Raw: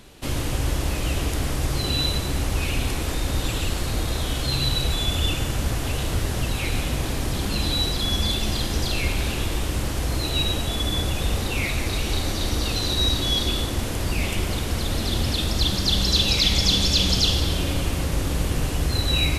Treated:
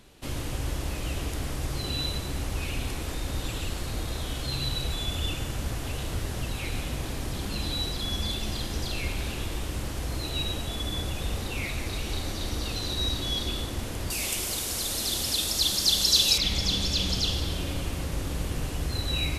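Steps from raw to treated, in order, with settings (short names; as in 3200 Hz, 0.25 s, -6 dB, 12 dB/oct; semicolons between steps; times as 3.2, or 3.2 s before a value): 14.1–16.38 tone controls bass -8 dB, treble +14 dB; gain -7 dB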